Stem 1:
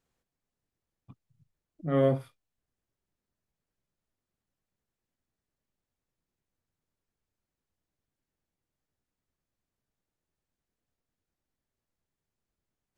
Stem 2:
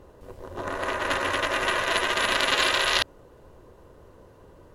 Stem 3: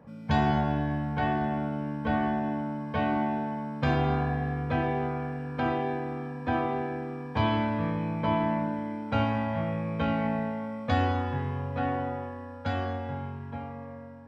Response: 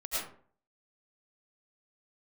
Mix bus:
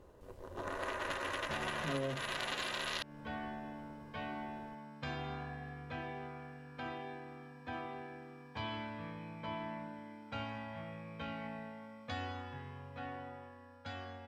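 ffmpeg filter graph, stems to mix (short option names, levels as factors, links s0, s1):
-filter_complex "[0:a]volume=0.75[s0];[1:a]volume=0.355[s1];[2:a]tiltshelf=f=1500:g=-6,adelay=1200,volume=0.266[s2];[s0][s1][s2]amix=inputs=3:normalize=0,acompressor=threshold=0.02:ratio=8"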